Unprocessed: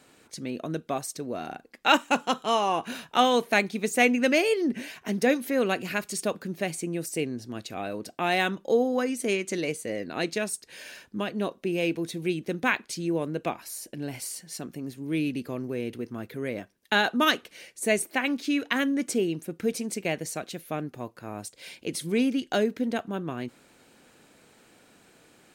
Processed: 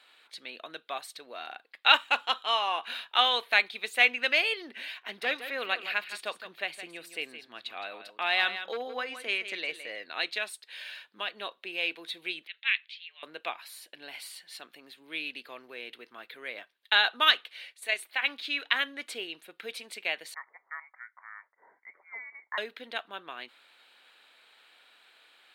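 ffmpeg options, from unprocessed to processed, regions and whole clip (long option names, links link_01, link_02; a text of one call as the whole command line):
ffmpeg -i in.wav -filter_complex "[0:a]asettb=1/sr,asplit=3[link_01][link_02][link_03];[link_01]atrim=end=5.024[link_04];[link_02]atrim=start=5.02:end=9.89,asetpts=PTS-STARTPTS,afade=type=in:duration=0.004:curve=qsin,afade=type=out:start_time=4.866:duration=0.004:curve=qsin,bass=frequency=250:gain=3,treble=frequency=4000:gain=-4,volume=15.5dB,asoftclip=hard,volume=-15.5dB,aecho=1:1:165:0.282,atrim=end_sample=214767[link_05];[link_03]atrim=start=9.886[link_06];[link_04][link_05]acrossfade=duration=0.004:curve1=hsin:curve2=qsin[link_07];[link_07][link_06]acrossfade=duration=0.004:curve1=qsin:curve2=hsin,asettb=1/sr,asplit=3[link_08][link_09][link_10];[link_08]atrim=end=12.474[link_11];[link_09]atrim=start=12.47:end=13.23,asetpts=PTS-STARTPTS,afade=type=in:duration=0.004:curve=qsin,afade=type=out:start_time=0.756:duration=0.004:curve=qsin,asuperpass=centerf=2600:order=4:qfactor=1.5,afreqshift=97[link_12];[link_10]atrim=start=13.226[link_13];[link_11][link_12]acrossfade=duration=0.004:curve1=hsin:curve2=qsin[link_14];[link_14][link_13]acrossfade=duration=0.004:curve1=qsin:curve2=hsin,asettb=1/sr,asplit=3[link_15][link_16][link_17];[link_15]atrim=end=17.734[link_18];[link_16]atrim=start=17.73:end=18.23,asetpts=PTS-STARTPTS,afade=type=in:duration=0.004:curve=qsin,afade=type=out:start_time=0.496:duration=0.004:curve=qsin,highpass=frequency=570:poles=1,tremolo=f=30:d=0.4[link_19];[link_17]atrim=start=18.226[link_20];[link_18][link_19]acrossfade=duration=0.004:curve1=hsin:curve2=qsin[link_21];[link_21][link_20]acrossfade=duration=0.004:curve1=qsin:curve2=hsin,asettb=1/sr,asplit=3[link_22][link_23][link_24];[link_22]atrim=end=20.344[link_25];[link_23]atrim=start=20.34:end=22.58,asetpts=PTS-STARTPTS,afade=type=in:duration=0.004:curve=qsin,afade=type=out:start_time=2.236:duration=0.004:curve=qsin,highpass=1100,lowpass=frequency=2100:width_type=q:width=0.5098,lowpass=frequency=2100:width_type=q:width=0.6013,lowpass=frequency=2100:width_type=q:width=0.9,lowpass=frequency=2100:width_type=q:width=2.563,afreqshift=-2500[link_26];[link_24]atrim=start=22.576[link_27];[link_25][link_26]acrossfade=duration=0.004:curve1=hsin:curve2=qsin[link_28];[link_28][link_27]acrossfade=duration=0.004:curve1=qsin:curve2=hsin,highpass=1000,highshelf=frequency=4800:width_type=q:width=3:gain=-8.5" out.wav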